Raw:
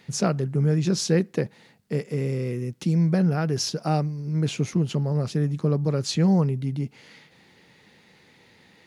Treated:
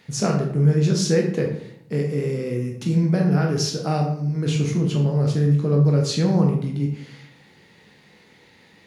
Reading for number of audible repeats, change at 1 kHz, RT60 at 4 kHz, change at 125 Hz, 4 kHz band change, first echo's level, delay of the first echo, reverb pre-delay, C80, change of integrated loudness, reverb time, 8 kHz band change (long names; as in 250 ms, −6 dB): no echo audible, +2.0 dB, 0.50 s, +4.0 dB, +2.0 dB, no echo audible, no echo audible, 15 ms, 9.0 dB, +3.5 dB, 0.65 s, +2.0 dB